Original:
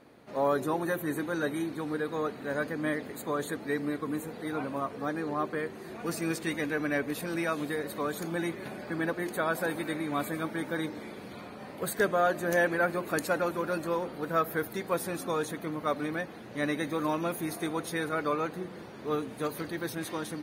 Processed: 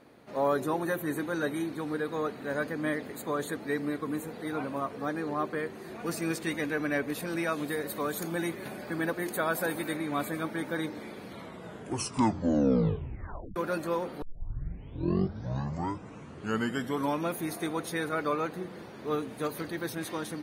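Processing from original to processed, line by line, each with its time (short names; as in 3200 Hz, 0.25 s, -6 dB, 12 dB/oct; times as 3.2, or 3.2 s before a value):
7.68–9.97 high shelf 9400 Hz +9.5 dB
11.25 tape stop 2.31 s
14.22 tape start 3.06 s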